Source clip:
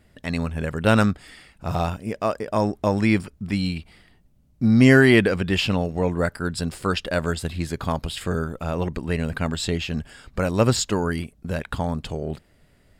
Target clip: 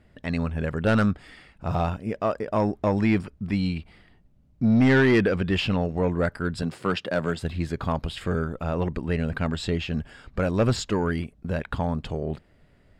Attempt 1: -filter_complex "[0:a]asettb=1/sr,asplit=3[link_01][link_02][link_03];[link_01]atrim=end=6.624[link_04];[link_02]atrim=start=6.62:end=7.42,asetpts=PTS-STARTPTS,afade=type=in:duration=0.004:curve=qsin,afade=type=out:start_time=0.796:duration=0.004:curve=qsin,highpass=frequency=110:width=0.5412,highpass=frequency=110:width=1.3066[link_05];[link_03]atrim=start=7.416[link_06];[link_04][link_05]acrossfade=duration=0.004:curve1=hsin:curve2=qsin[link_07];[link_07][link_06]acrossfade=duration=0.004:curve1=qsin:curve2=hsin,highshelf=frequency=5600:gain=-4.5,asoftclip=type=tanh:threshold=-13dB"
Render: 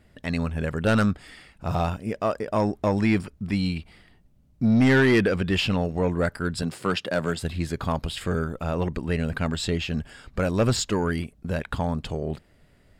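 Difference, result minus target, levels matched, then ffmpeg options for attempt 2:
8,000 Hz band +6.5 dB
-filter_complex "[0:a]asettb=1/sr,asplit=3[link_01][link_02][link_03];[link_01]atrim=end=6.624[link_04];[link_02]atrim=start=6.62:end=7.42,asetpts=PTS-STARTPTS,afade=type=in:duration=0.004:curve=qsin,afade=type=out:start_time=0.796:duration=0.004:curve=qsin,highpass=frequency=110:width=0.5412,highpass=frequency=110:width=1.3066[link_05];[link_03]atrim=start=7.416[link_06];[link_04][link_05]acrossfade=duration=0.004:curve1=hsin:curve2=qsin[link_07];[link_07][link_06]acrossfade=duration=0.004:curve1=qsin:curve2=hsin,highshelf=frequency=5600:gain=-15.5,asoftclip=type=tanh:threshold=-13dB"

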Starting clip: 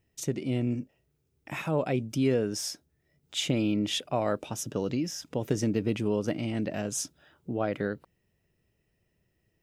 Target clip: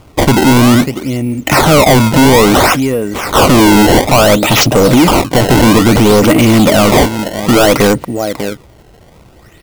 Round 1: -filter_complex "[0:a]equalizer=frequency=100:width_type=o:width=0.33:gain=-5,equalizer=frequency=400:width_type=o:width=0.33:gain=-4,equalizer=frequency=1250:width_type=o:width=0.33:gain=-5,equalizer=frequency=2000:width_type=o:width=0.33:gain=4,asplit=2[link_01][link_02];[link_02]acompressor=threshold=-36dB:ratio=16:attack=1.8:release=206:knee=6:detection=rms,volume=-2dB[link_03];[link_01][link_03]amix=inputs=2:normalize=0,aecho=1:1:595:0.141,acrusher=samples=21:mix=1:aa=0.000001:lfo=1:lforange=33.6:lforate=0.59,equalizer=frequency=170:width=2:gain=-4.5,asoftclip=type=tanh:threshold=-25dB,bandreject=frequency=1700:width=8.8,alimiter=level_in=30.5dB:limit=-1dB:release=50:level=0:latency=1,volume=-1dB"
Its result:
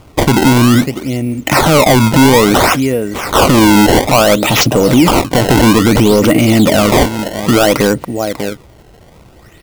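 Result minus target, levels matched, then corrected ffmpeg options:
downward compressor: peak gain reduction +8.5 dB; soft clipping: distortion −7 dB
-filter_complex "[0:a]equalizer=frequency=100:width_type=o:width=0.33:gain=-5,equalizer=frequency=400:width_type=o:width=0.33:gain=-4,equalizer=frequency=1250:width_type=o:width=0.33:gain=-5,equalizer=frequency=2000:width_type=o:width=0.33:gain=4,asplit=2[link_01][link_02];[link_02]acompressor=threshold=-27dB:ratio=16:attack=1.8:release=206:knee=6:detection=rms,volume=-2dB[link_03];[link_01][link_03]amix=inputs=2:normalize=0,aecho=1:1:595:0.141,acrusher=samples=21:mix=1:aa=0.000001:lfo=1:lforange=33.6:lforate=0.59,equalizer=frequency=170:width=2:gain=-4.5,asoftclip=type=tanh:threshold=-33.5dB,bandreject=frequency=1700:width=8.8,alimiter=level_in=30.5dB:limit=-1dB:release=50:level=0:latency=1,volume=-1dB"

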